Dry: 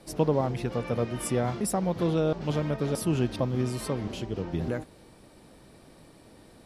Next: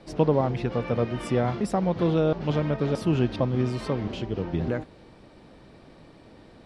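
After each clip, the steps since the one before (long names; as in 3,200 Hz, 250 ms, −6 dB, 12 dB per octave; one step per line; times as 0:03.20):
low-pass filter 4,200 Hz 12 dB per octave
level +3 dB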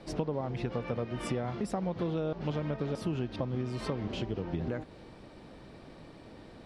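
downward compressor 6 to 1, threshold −30 dBFS, peak gain reduction 13.5 dB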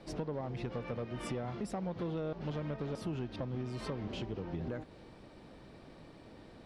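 soft clipping −25 dBFS, distortion −18 dB
level −3.5 dB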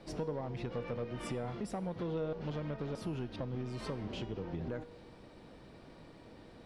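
tuned comb filter 480 Hz, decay 0.71 s, mix 70%
level +9.5 dB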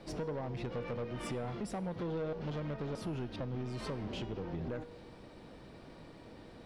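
soft clipping −33.5 dBFS, distortion −17 dB
level +2 dB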